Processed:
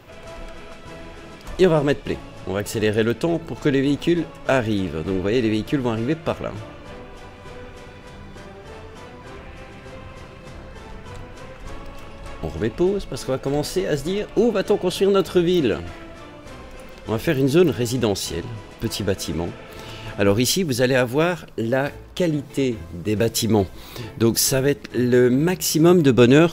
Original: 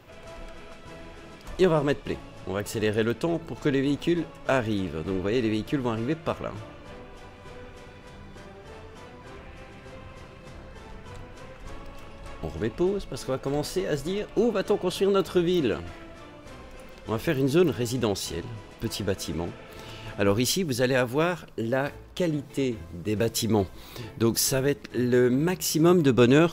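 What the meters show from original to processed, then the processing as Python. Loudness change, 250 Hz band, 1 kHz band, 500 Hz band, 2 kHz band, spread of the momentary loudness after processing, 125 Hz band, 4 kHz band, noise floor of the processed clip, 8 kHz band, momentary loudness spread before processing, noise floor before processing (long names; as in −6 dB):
+5.5 dB, +5.5 dB, +4.0 dB, +5.5 dB, +5.0 dB, 22 LU, +5.5 dB, +5.5 dB, −41 dBFS, +5.5 dB, 22 LU, −46 dBFS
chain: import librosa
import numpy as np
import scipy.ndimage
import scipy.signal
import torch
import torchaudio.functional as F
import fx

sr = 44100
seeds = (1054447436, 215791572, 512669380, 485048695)

y = fx.dynamic_eq(x, sr, hz=1100.0, q=4.5, threshold_db=-48.0, ratio=4.0, max_db=-6)
y = y * 10.0 ** (5.5 / 20.0)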